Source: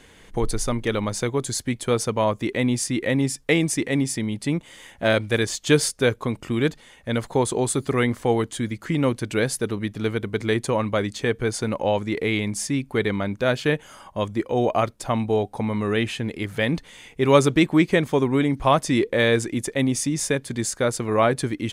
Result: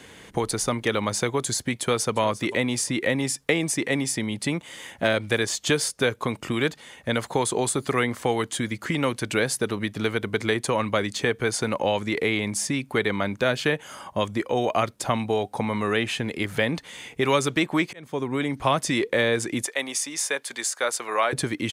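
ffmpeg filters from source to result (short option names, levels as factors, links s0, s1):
-filter_complex "[0:a]asplit=2[s0][s1];[s1]afade=t=in:st=1.74:d=0.01,afade=t=out:st=2.19:d=0.01,aecho=0:1:350|700:0.133352|0.0266704[s2];[s0][s2]amix=inputs=2:normalize=0,asettb=1/sr,asplit=3[s3][s4][s5];[s3]atrim=end=19.664[s6];[s4]atrim=start=19.66:end=21.33,asetpts=PTS-STARTPTS,afade=t=in:d=0.004:c=qsin,afade=t=out:st=1.666:d=0.004:c=qsin,highpass=850[s7];[s5]atrim=start=21.326[s8];[s6][s7]acrossfade=d=0.004:c1=hsin:c2=qsin[s9];[s9][s8]acrossfade=d=0.004:c1=qsin:c2=hsin,asplit=2[s10][s11];[s10]atrim=end=17.93,asetpts=PTS-STARTPTS,afade=t=out:st=17.926:d=0.004:c=hsin[s12];[s11]atrim=start=17.93,asetpts=PTS-STARTPTS,afade=t=in:d=0.85[s13];[s12][s13]concat=n=2:v=0:a=1,highpass=89,acrossover=split=560|1200[s14][s15][s16];[s14]acompressor=threshold=0.0282:ratio=4[s17];[s15]acompressor=threshold=0.0251:ratio=4[s18];[s16]acompressor=threshold=0.0355:ratio=4[s19];[s17][s18][s19]amix=inputs=3:normalize=0,volume=1.68"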